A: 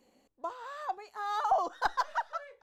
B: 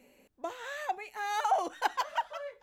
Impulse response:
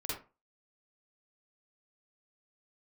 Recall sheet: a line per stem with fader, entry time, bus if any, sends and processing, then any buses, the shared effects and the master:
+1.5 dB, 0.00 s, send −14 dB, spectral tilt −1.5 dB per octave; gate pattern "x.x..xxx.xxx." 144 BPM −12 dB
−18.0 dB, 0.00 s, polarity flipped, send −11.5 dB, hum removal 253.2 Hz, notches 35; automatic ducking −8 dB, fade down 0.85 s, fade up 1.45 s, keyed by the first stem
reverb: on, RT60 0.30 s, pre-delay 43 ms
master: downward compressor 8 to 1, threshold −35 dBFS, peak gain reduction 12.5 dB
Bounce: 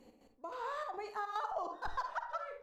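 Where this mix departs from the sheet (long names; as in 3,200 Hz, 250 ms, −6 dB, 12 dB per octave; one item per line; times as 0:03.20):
stem A: send −14 dB → −6 dB
stem B: polarity flipped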